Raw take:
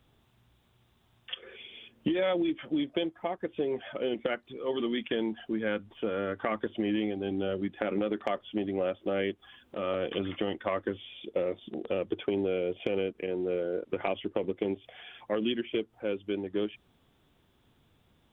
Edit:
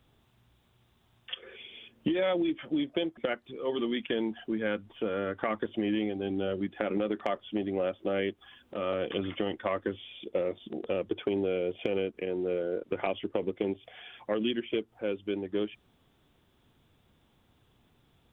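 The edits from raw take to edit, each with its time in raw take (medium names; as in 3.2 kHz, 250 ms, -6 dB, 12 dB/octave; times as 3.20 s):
3.17–4.18 s: delete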